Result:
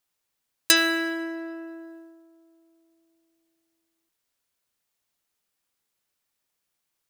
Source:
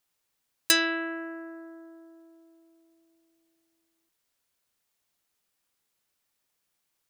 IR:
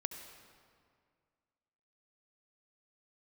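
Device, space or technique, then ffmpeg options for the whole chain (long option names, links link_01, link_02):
keyed gated reverb: -filter_complex "[0:a]asplit=3[link_01][link_02][link_03];[1:a]atrim=start_sample=2205[link_04];[link_02][link_04]afir=irnorm=-1:irlink=0[link_05];[link_03]apad=whole_len=312777[link_06];[link_05][link_06]sidechaingate=range=-33dB:threshold=-50dB:ratio=16:detection=peak,volume=-1dB[link_07];[link_01][link_07]amix=inputs=2:normalize=0,volume=-1.5dB"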